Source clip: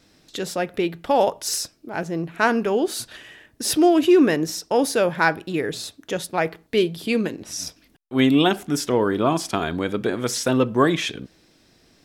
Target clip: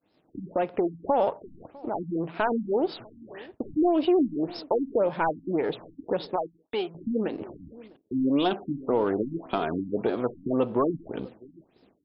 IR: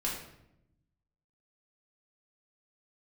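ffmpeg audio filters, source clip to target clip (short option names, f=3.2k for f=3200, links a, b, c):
-filter_complex "[0:a]aeval=exprs='if(lt(val(0),0),0.447*val(0),val(0))':c=same,highpass=43,asplit=2[a][b];[b]highpass=f=720:p=1,volume=17dB,asoftclip=type=tanh:threshold=-1dB[c];[a][c]amix=inputs=2:normalize=0,lowpass=f=1.3k:p=1,volume=-6dB,equalizer=f=1.7k:w=1.4:g=-10,acompressor=threshold=-36dB:ratio=2,asplit=2[d][e];[e]adelay=651,lowpass=f=820:p=1,volume=-19.5dB,asplit=2[f][g];[g]adelay=651,lowpass=f=820:p=1,volume=0.16[h];[f][h]amix=inputs=2:normalize=0[i];[d][i]amix=inputs=2:normalize=0,deesser=0.8,asettb=1/sr,asplit=3[j][k][l];[j]atrim=end=6.364[m];[k]atrim=start=6.36:end=6.95,asetpts=PTS-STARTPTS,afade=t=in:d=0.004:c=qsin,afade=t=out:st=0.586:d=0.004:c=qsin,lowshelf=f=400:g=-11.5[n];[l]atrim=start=6.946[o];[m][n]acrossfade=d=0.004:c1=hsin:c2=qsin[p];[p][o]acrossfade=d=0.004:c1=qsin:c2=hsin,agate=range=-33dB:threshold=-46dB:ratio=3:detection=peak,afftfilt=real='re*lt(b*sr/1024,290*pow(5500/290,0.5+0.5*sin(2*PI*1.8*pts/sr)))':imag='im*lt(b*sr/1024,290*pow(5500/290,0.5+0.5*sin(2*PI*1.8*pts/sr)))':win_size=1024:overlap=0.75,volume=5.5dB"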